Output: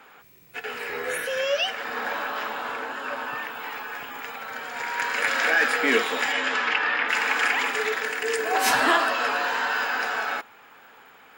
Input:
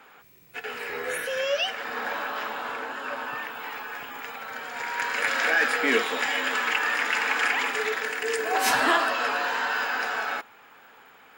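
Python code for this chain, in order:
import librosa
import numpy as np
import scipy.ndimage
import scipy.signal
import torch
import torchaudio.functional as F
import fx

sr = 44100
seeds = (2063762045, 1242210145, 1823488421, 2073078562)

y = fx.lowpass(x, sr, hz=fx.line((6.32, 8500.0), (7.08, 3600.0)), slope=24, at=(6.32, 7.08), fade=0.02)
y = y * librosa.db_to_amplitude(1.5)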